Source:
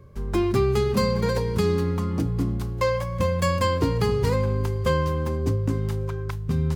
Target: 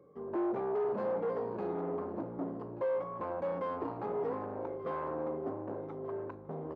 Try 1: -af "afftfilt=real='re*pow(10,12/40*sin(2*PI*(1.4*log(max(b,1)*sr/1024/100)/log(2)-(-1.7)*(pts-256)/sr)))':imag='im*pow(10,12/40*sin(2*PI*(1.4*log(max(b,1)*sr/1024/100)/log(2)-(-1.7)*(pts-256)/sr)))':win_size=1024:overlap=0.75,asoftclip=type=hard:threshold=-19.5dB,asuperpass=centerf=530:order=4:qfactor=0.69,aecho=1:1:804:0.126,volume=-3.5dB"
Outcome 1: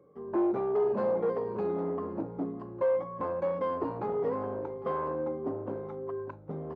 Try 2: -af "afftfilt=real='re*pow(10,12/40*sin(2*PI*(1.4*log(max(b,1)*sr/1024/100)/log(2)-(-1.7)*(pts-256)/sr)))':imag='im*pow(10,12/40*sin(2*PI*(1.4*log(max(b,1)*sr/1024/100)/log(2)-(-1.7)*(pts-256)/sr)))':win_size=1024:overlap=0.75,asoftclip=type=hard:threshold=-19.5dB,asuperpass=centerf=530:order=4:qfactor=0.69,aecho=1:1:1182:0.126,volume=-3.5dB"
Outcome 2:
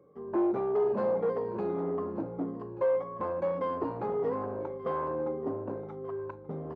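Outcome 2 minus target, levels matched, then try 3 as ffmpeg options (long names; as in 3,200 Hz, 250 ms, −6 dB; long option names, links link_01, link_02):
hard clipping: distortion −5 dB
-af "afftfilt=real='re*pow(10,12/40*sin(2*PI*(1.4*log(max(b,1)*sr/1024/100)/log(2)-(-1.7)*(pts-256)/sr)))':imag='im*pow(10,12/40*sin(2*PI*(1.4*log(max(b,1)*sr/1024/100)/log(2)-(-1.7)*(pts-256)/sr)))':win_size=1024:overlap=0.75,asoftclip=type=hard:threshold=-26dB,asuperpass=centerf=530:order=4:qfactor=0.69,aecho=1:1:1182:0.126,volume=-3.5dB"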